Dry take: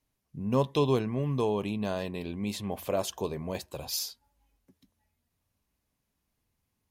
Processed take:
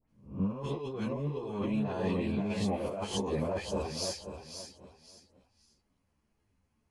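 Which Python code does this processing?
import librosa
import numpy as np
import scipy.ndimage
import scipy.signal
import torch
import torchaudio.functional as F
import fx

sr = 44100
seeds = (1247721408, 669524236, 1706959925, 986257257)

p1 = fx.spec_swells(x, sr, rise_s=0.42)
p2 = scipy.signal.sosfilt(scipy.signal.butter(16, 11000.0, 'lowpass', fs=sr, output='sos'), p1)
p3 = fx.high_shelf(p2, sr, hz=3100.0, db=-10.5)
p4 = fx.notch(p3, sr, hz=3700.0, q=9.9)
p5 = fx.dispersion(p4, sr, late='highs', ms=93.0, hz=2200.0)
p6 = p5 + fx.echo_feedback(p5, sr, ms=535, feedback_pct=27, wet_db=-8.5, dry=0)
p7 = fx.over_compress(p6, sr, threshold_db=-33.0, ratio=-1.0)
p8 = fx.ensemble(p7, sr)
y = p8 * 10.0 ** (2.5 / 20.0)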